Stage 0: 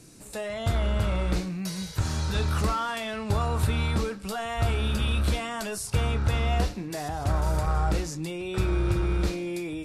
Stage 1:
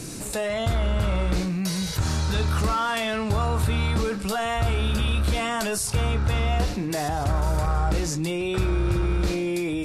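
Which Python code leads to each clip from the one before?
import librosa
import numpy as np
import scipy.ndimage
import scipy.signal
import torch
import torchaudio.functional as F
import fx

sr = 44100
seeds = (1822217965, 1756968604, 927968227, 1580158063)

y = fx.env_flatten(x, sr, amount_pct=50)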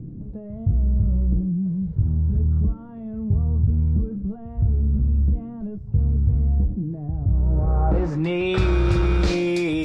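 y = fx.filter_sweep_lowpass(x, sr, from_hz=180.0, to_hz=5500.0, start_s=7.31, end_s=8.69, q=0.94)
y = y * 10.0 ** (4.0 / 20.0)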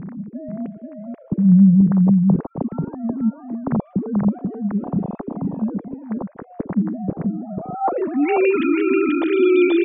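y = fx.sine_speech(x, sr)
y = y + 10.0 ** (-3.5 / 20.0) * np.pad(y, (int(485 * sr / 1000.0), 0))[:len(y)]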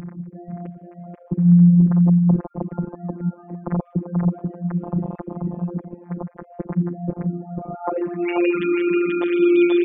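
y = fx.robotise(x, sr, hz=174.0)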